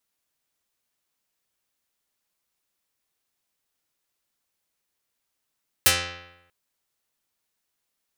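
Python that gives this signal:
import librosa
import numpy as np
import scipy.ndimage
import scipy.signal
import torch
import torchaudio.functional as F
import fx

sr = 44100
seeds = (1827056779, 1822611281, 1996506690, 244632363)

y = fx.pluck(sr, length_s=0.64, note=41, decay_s=0.92, pick=0.38, brightness='dark')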